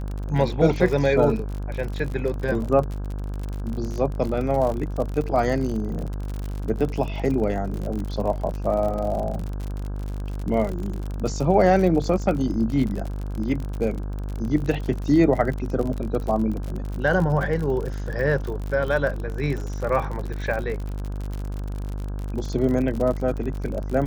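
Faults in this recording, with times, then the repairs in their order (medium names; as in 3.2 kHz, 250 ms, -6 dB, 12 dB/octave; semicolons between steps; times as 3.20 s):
buzz 50 Hz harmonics 33 -29 dBFS
crackle 51 per s -28 dBFS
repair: de-click; de-hum 50 Hz, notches 33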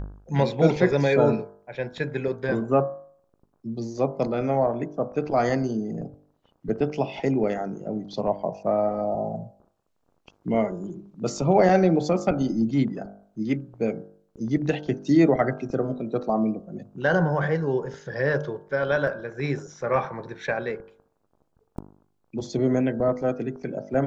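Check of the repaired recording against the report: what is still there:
nothing left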